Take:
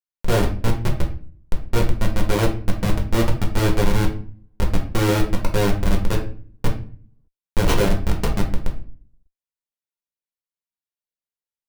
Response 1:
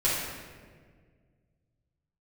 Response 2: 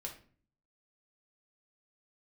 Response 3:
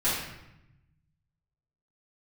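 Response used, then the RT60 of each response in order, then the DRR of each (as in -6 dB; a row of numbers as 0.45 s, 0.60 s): 2; 1.7 s, 0.45 s, 0.90 s; -10.0 dB, 0.0 dB, -11.5 dB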